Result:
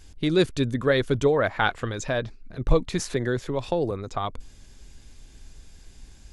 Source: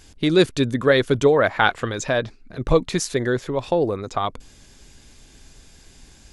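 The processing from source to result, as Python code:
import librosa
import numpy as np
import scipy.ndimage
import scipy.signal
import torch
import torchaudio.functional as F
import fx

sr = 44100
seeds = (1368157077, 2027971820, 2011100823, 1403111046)

y = fx.low_shelf(x, sr, hz=92.0, db=10.5)
y = fx.band_squash(y, sr, depth_pct=40, at=(2.99, 3.91))
y = y * librosa.db_to_amplitude(-5.5)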